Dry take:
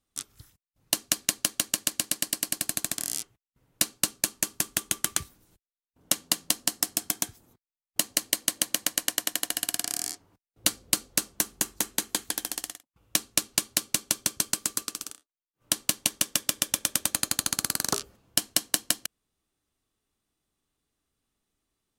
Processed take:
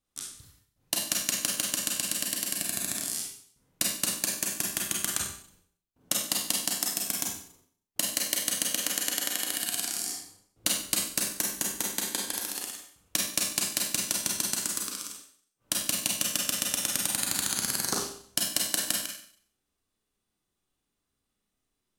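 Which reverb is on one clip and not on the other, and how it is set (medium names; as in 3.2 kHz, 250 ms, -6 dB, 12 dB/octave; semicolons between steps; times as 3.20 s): Schroeder reverb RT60 0.55 s, combs from 31 ms, DRR -1.5 dB; trim -4.5 dB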